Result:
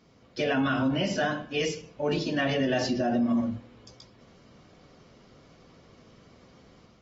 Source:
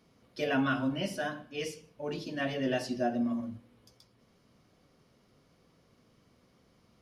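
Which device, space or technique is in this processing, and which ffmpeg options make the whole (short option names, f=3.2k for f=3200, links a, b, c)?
low-bitrate web radio: -af "dynaudnorm=f=310:g=3:m=5dB,alimiter=limit=-23dB:level=0:latency=1:release=60,volume=4.5dB" -ar 44100 -c:a aac -b:a 24k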